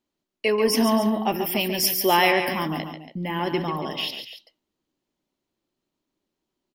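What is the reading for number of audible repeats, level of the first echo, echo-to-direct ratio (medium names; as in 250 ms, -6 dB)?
2, -8.0 dB, -7.0 dB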